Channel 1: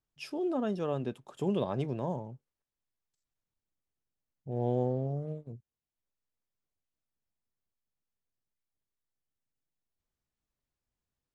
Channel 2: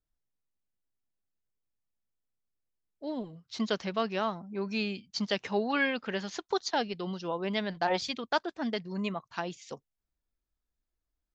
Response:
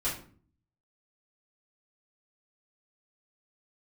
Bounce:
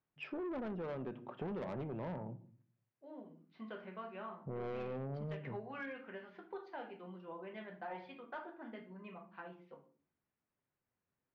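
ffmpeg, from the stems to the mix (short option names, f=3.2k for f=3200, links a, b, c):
-filter_complex "[0:a]highpass=120,volume=2.5dB,asplit=3[a][b][c];[b]volume=-17.5dB[d];[1:a]highpass=f=240:p=1,volume=-10dB,asplit=2[e][f];[f]volume=-12.5dB[g];[c]apad=whole_len=500514[h];[e][h]sidechaingate=range=-9dB:threshold=-48dB:ratio=16:detection=peak[i];[2:a]atrim=start_sample=2205[j];[d][g]amix=inputs=2:normalize=0[k];[k][j]afir=irnorm=-1:irlink=0[l];[a][i][l]amix=inputs=3:normalize=0,lowpass=f=2.4k:w=0.5412,lowpass=f=2.4k:w=1.3066,asoftclip=type=tanh:threshold=-30dB,acompressor=threshold=-40dB:ratio=5"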